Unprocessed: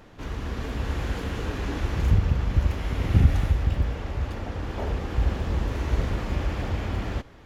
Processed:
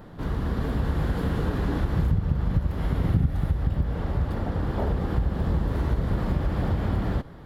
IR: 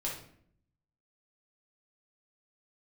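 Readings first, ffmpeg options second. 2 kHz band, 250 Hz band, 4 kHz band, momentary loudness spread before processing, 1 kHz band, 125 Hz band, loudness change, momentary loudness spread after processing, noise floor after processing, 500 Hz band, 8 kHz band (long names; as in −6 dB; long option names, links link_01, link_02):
−2.5 dB, +4.0 dB, −5.0 dB, 10 LU, +1.0 dB, +0.5 dB, +0.5 dB, 4 LU, −42 dBFS, +1.5 dB, can't be measured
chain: -af "acompressor=threshold=-25dB:ratio=6,equalizer=frequency=160:width_type=o:width=0.67:gain=8,equalizer=frequency=2500:width_type=o:width=0.67:gain=-10,equalizer=frequency=6300:width_type=o:width=0.67:gain=-12,volume=4dB"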